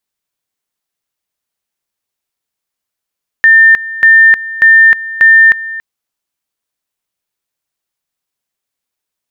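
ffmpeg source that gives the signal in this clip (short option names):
-f lavfi -i "aevalsrc='pow(10,(-1.5-17*gte(mod(t,0.59),0.31))/20)*sin(2*PI*1800*t)':d=2.36:s=44100"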